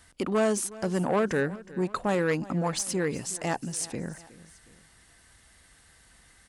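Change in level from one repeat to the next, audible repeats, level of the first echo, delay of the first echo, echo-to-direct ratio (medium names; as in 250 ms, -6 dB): -5.5 dB, 2, -19.0 dB, 365 ms, -18.0 dB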